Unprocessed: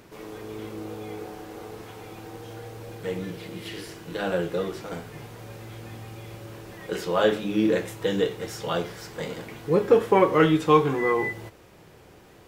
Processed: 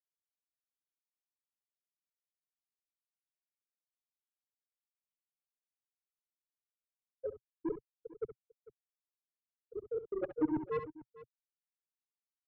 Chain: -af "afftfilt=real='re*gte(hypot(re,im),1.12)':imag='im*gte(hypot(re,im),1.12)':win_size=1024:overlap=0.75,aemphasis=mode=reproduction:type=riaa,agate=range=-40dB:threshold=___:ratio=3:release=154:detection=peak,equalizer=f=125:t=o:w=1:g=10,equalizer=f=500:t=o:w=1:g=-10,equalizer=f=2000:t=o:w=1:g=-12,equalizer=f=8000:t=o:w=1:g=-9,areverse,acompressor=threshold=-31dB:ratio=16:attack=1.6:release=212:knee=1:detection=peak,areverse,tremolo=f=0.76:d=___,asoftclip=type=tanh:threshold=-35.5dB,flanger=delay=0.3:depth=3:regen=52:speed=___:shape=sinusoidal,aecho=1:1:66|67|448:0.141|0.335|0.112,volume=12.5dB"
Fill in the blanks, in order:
-25dB, 0.67, 1.2